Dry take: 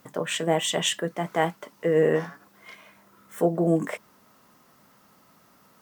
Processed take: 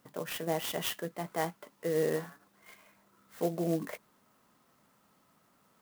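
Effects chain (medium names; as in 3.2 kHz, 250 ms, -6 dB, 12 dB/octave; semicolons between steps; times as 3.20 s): sampling jitter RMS 0.042 ms; trim -9 dB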